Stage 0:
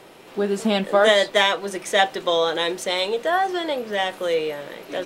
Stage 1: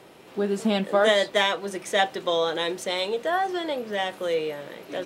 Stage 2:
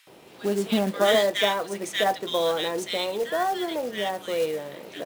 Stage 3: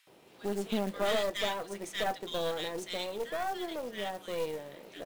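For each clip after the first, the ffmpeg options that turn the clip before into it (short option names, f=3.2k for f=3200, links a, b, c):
-af "highpass=51,lowshelf=f=280:g=4.5,volume=-4.5dB"
-filter_complex "[0:a]highpass=43,acrossover=split=1600[a][b];[a]adelay=70[c];[c][b]amix=inputs=2:normalize=0,acrusher=bits=4:mode=log:mix=0:aa=0.000001"
-af "aeval=exprs='(tanh(7.94*val(0)+0.65)-tanh(0.65))/7.94':c=same,volume=-5.5dB"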